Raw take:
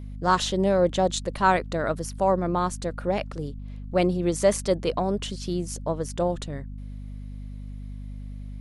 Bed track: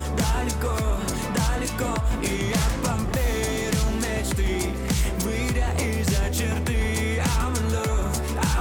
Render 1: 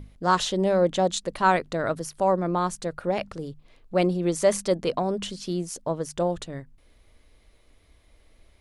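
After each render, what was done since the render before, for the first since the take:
mains-hum notches 50/100/150/200/250 Hz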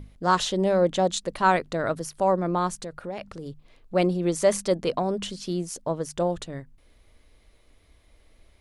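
0:02.84–0:03.46: downward compressor 2 to 1, threshold −36 dBFS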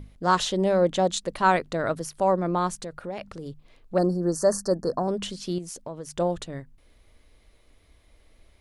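0:03.98–0:05.08: Chebyshev band-stop filter 1,800–4,300 Hz, order 5
0:05.58–0:06.12: downward compressor 3 to 1, threshold −34 dBFS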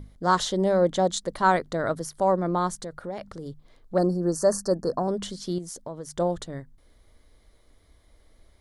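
parametric band 2,600 Hz −13 dB 0.3 octaves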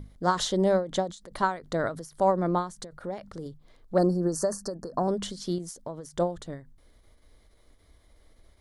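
every ending faded ahead of time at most 150 dB per second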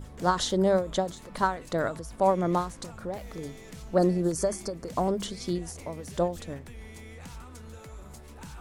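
mix in bed track −21 dB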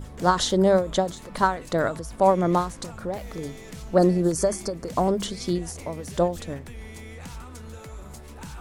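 level +4.5 dB

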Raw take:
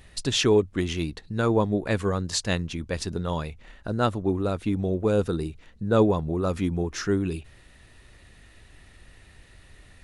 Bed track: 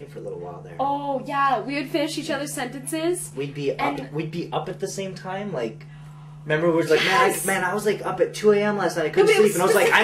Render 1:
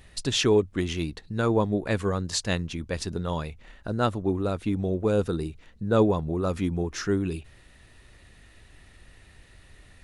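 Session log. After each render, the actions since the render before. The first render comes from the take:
level −1 dB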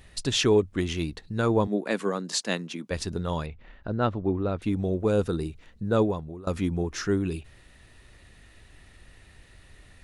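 0:01.67–0:02.91: Butterworth high-pass 180 Hz
0:03.46–0:04.62: high-frequency loss of the air 220 metres
0:05.84–0:06.47: fade out, to −20.5 dB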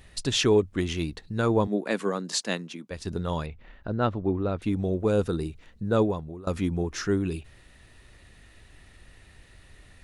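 0:02.42–0:03.05: fade out, to −9 dB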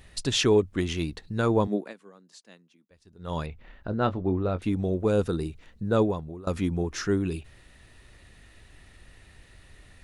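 0:01.74–0:03.38: duck −23 dB, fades 0.20 s
0:03.90–0:04.67: double-tracking delay 22 ms −11 dB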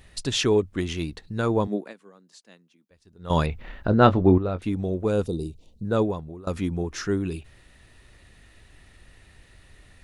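0:03.30–0:04.38: clip gain +9.5 dB
0:05.26–0:05.85: Butterworth band-reject 1,600 Hz, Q 0.55

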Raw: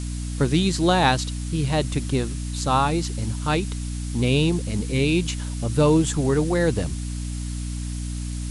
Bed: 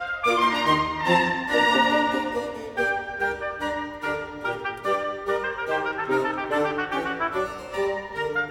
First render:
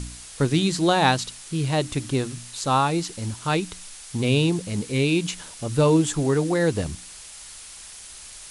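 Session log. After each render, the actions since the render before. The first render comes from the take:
hum removal 60 Hz, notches 5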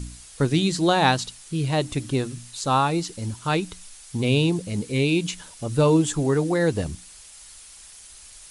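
broadband denoise 6 dB, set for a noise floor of −42 dBFS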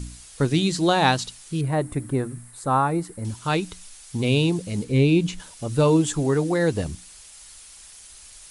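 0:01.61–0:03.25: flat-topped bell 4,200 Hz −15 dB
0:04.84–0:05.40: spectral tilt −2 dB per octave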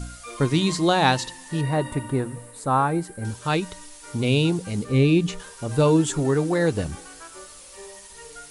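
mix in bed −18 dB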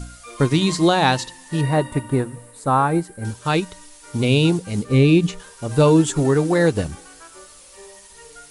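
in parallel at +2 dB: brickwall limiter −15.5 dBFS, peak gain reduction 11 dB
on the sum: expander for the loud parts 1.5 to 1, over −27 dBFS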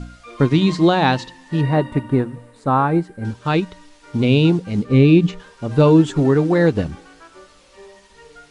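low-pass filter 4,000 Hz 12 dB per octave
parametric band 230 Hz +4.5 dB 1.2 octaves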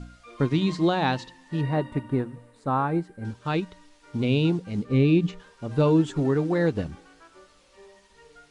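level −8 dB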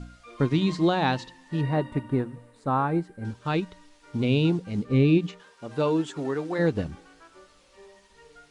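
0:05.17–0:06.58: high-pass filter 290 Hz → 610 Hz 6 dB per octave

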